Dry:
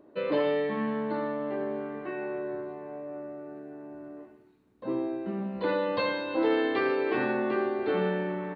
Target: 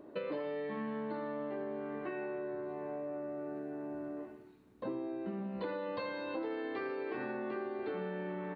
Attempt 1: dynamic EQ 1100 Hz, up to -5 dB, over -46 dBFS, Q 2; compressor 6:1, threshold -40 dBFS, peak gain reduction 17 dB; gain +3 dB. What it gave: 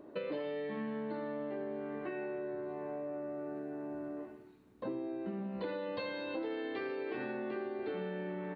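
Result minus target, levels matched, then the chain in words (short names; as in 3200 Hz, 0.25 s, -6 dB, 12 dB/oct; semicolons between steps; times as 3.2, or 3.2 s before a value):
4000 Hz band +3.0 dB
dynamic EQ 3300 Hz, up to -5 dB, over -46 dBFS, Q 2; compressor 6:1, threshold -40 dBFS, peak gain reduction 17 dB; gain +3 dB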